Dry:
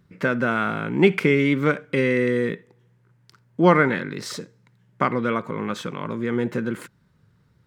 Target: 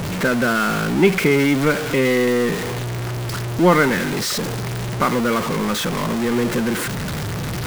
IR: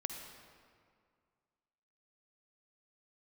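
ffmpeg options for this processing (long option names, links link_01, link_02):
-af "aeval=exprs='val(0)+0.5*0.112*sgn(val(0))':channel_layout=same"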